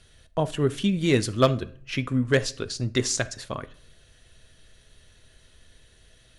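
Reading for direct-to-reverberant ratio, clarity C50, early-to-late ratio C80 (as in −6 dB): 11.5 dB, 18.0 dB, 23.5 dB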